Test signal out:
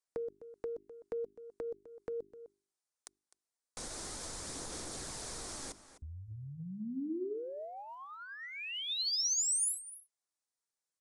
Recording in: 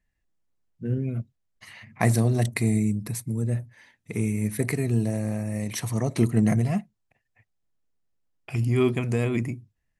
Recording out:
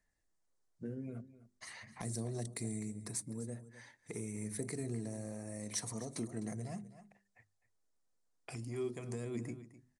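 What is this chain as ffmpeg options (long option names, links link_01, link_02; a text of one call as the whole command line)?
ffmpeg -i in.wav -filter_complex "[0:a]bandreject=frequency=50:width_type=h:width=6,bandreject=frequency=100:width_type=h:width=6,bandreject=frequency=150:width_type=h:width=6,bandreject=frequency=200:width_type=h:width=6,bandreject=frequency=250:width_type=h:width=6,bandreject=frequency=300:width_type=h:width=6,bandreject=frequency=350:width_type=h:width=6,bandreject=frequency=400:width_type=h:width=6,aresample=22050,aresample=44100,equalizer=frequency=2800:width=1.8:gain=-10,acompressor=threshold=-38dB:ratio=2.5,bass=frequency=250:gain=-9,treble=frequency=4000:gain=4,asoftclip=type=tanh:threshold=-22dB,aphaser=in_gain=1:out_gain=1:delay=4.3:decay=0.23:speed=0.42:type=sinusoidal,aecho=1:1:255:0.15,acrossover=split=440|3000[link_01][link_02][link_03];[link_02]acompressor=threshold=-50dB:ratio=6[link_04];[link_01][link_04][link_03]amix=inputs=3:normalize=0" out.wav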